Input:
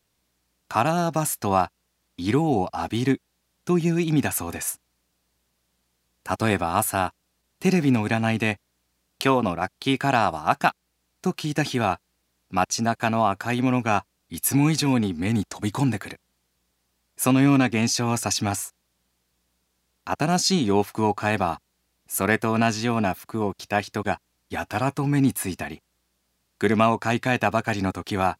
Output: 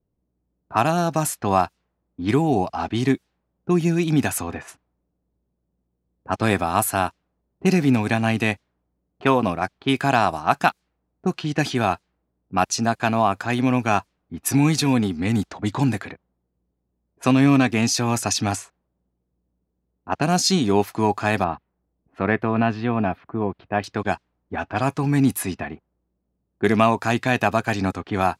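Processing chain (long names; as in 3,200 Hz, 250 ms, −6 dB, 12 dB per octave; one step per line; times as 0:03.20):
low-pass that shuts in the quiet parts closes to 430 Hz, open at −19.5 dBFS
0:21.44–0:23.84: high-frequency loss of the air 410 metres
level +2 dB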